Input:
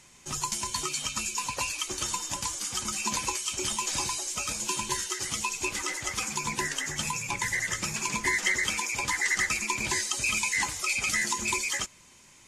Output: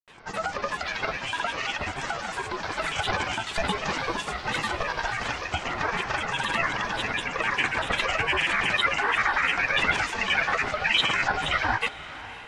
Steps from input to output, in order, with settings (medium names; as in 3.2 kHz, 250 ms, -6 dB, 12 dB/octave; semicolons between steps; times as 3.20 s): low-pass 5.1 kHz 24 dB/octave; high-order bell 910 Hz +11.5 dB; peak limiter -19.5 dBFS, peak gain reduction 11 dB; small resonant body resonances 440/1600/2300 Hz, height 15 dB, ringing for 20 ms; granulator, grains 20 per s, pitch spread up and down by 7 st; ring modulator 330 Hz; on a send: echo that smears into a reverb 538 ms, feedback 43%, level -15 dB; on the sum: trim +2.5 dB